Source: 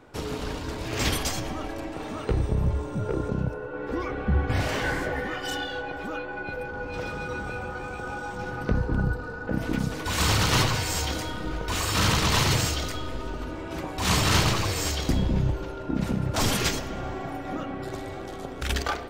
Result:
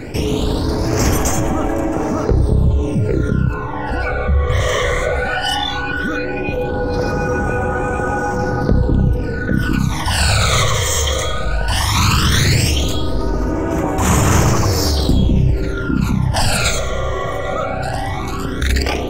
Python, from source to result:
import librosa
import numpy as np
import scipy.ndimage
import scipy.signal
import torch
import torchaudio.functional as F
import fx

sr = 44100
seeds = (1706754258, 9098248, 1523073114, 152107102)

y = fx.phaser_stages(x, sr, stages=12, low_hz=260.0, high_hz=4200.0, hz=0.16, feedback_pct=35)
y = fx.env_flatten(y, sr, amount_pct=50)
y = F.gain(torch.from_numpy(y), 7.5).numpy()